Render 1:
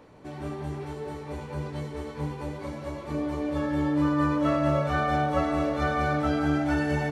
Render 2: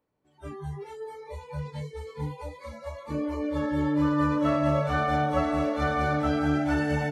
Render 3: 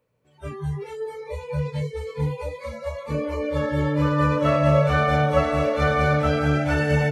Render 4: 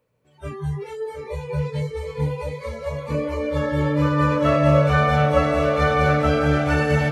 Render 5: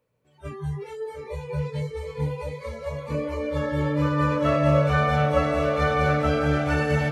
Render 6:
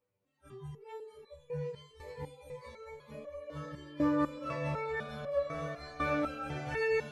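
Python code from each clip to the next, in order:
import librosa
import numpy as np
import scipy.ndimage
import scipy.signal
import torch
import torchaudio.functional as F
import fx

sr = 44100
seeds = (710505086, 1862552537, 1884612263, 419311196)

y1 = fx.noise_reduce_blind(x, sr, reduce_db=27)
y2 = fx.graphic_eq_31(y1, sr, hz=(125, 315, 500, 800, 2500), db=(10, -10, 8, -6, 6))
y2 = y2 * librosa.db_to_amplitude(5.5)
y3 = fx.echo_feedback(y2, sr, ms=719, feedback_pct=38, wet_db=-10)
y3 = y3 * librosa.db_to_amplitude(1.5)
y4 = fx.attack_slew(y3, sr, db_per_s=410.0)
y4 = y4 * librosa.db_to_amplitude(-3.5)
y5 = fx.resonator_held(y4, sr, hz=4.0, low_hz=98.0, high_hz=570.0)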